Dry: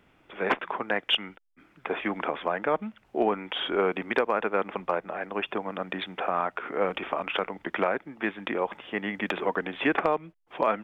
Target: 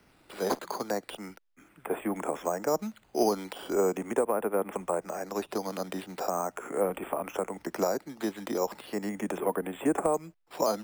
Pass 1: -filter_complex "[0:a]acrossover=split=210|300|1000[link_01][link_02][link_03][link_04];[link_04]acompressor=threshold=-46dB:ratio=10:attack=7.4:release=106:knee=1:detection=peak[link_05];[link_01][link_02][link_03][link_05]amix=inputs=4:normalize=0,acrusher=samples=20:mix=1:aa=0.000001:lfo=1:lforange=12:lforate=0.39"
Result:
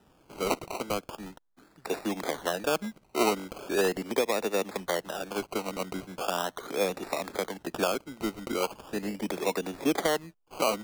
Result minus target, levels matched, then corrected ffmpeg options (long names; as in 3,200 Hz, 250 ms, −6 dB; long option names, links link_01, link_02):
sample-and-hold swept by an LFO: distortion +12 dB
-filter_complex "[0:a]acrossover=split=210|300|1000[link_01][link_02][link_03][link_04];[link_04]acompressor=threshold=-46dB:ratio=10:attack=7.4:release=106:knee=1:detection=peak[link_05];[link_01][link_02][link_03][link_05]amix=inputs=4:normalize=0,acrusher=samples=6:mix=1:aa=0.000001:lfo=1:lforange=3.6:lforate=0.39"